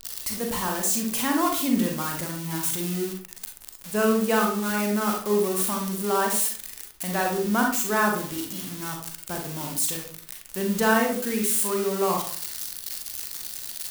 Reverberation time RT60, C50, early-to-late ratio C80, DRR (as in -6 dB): 0.50 s, 4.0 dB, 9.5 dB, 0.5 dB